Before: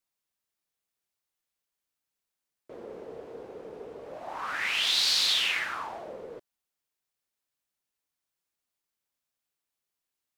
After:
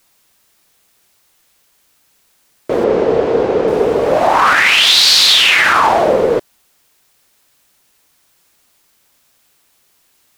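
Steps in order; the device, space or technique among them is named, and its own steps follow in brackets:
loud club master (downward compressor 1.5 to 1, threshold −34 dBFS, peak gain reduction 4.5 dB; hard clipping −22.5 dBFS, distortion −26 dB; boost into a limiter +30.5 dB)
0:02.84–0:03.68: low-pass filter 5,700 Hz 12 dB per octave
level −1 dB

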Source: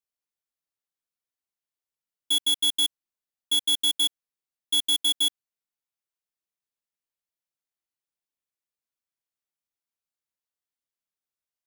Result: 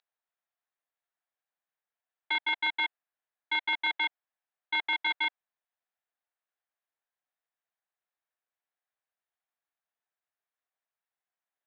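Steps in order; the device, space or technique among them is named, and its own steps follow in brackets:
toy sound module (linearly interpolated sample-rate reduction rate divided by 8×; switching amplifier with a slow clock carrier 15,000 Hz; loudspeaker in its box 590–4,600 Hz, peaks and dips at 710 Hz +6 dB, 1,700 Hz +5 dB, 3,900 Hz +10 dB)
level −4.5 dB

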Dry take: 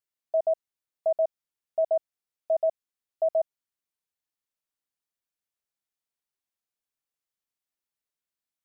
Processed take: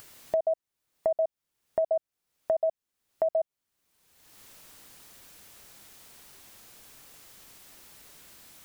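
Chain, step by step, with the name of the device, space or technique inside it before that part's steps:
low-shelf EQ 460 Hz +4.5 dB
upward and downward compression (upward compression, threshold −30 dBFS; downward compressor 5 to 1, threshold −29 dBFS, peak gain reduction 8.5 dB)
level +4.5 dB

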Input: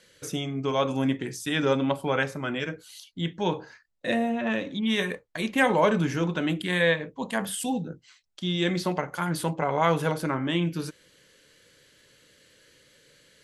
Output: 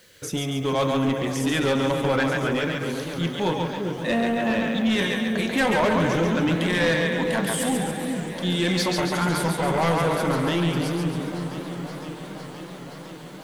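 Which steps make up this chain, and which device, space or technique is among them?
0:08.68–0:09.34: parametric band 5,400 Hz +7.5 dB 2.4 octaves
echo with a time of its own for lows and highs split 480 Hz, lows 391 ms, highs 139 ms, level −4 dB
open-reel tape (soft clipping −20.5 dBFS, distortion −12 dB; parametric band 74 Hz +5 dB 1.01 octaves; white noise bed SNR 37 dB)
feedback echo with a swinging delay time 515 ms, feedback 80%, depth 206 cents, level −14.5 dB
level +4 dB

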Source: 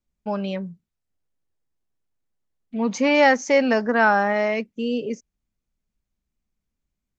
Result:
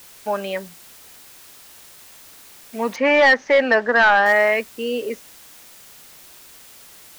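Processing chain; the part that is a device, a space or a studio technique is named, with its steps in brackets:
drive-through speaker (band-pass filter 420–3,600 Hz; parametric band 1,800 Hz +8 dB 0.37 octaves; hard clipping −14 dBFS, distortion −10 dB; white noise bed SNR 24 dB)
0:02.96–0:04.26: high-frequency loss of the air 150 metres
level +5.5 dB

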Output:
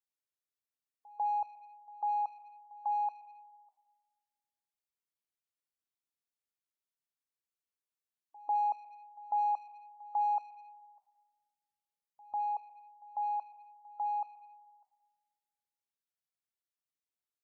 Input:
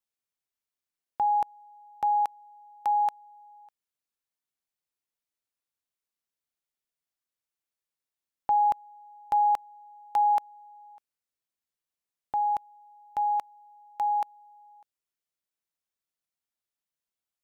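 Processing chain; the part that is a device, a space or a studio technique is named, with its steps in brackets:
high-pass filter 62 Hz 12 dB per octave
gate on every frequency bin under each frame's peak −25 dB strong
saturated reverb return (on a send at −12 dB: convolution reverb RT60 1.4 s, pre-delay 17 ms + soft clipping −33.5 dBFS, distortion −8 dB)
on the sum: dynamic equaliser 410 Hz, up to +5 dB, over −52 dBFS, Q 4.2
backwards echo 147 ms −22.5 dB
level −8 dB

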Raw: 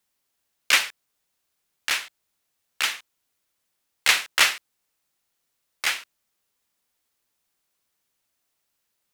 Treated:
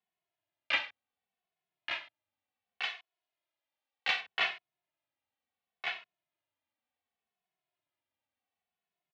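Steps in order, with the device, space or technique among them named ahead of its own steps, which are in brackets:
0:02.81–0:04.21: bass and treble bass −13 dB, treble +6 dB
barber-pole flanger into a guitar amplifier (barber-pole flanger 2.3 ms −0.68 Hz; soft clipping −7.5 dBFS, distortion −22 dB; loudspeaker in its box 90–3,400 Hz, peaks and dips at 94 Hz +6 dB, 470 Hz −3 dB, 710 Hz +9 dB, 1,400 Hz −4 dB)
level −6.5 dB

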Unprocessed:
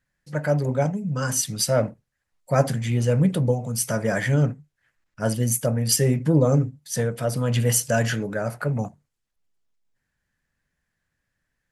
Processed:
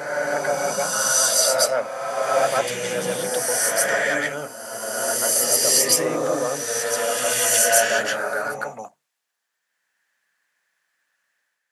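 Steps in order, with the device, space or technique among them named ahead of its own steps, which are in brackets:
ghost voice (reversed playback; convolution reverb RT60 2.5 s, pre-delay 113 ms, DRR −5 dB; reversed playback; high-pass filter 720 Hz 12 dB per octave)
level +3 dB

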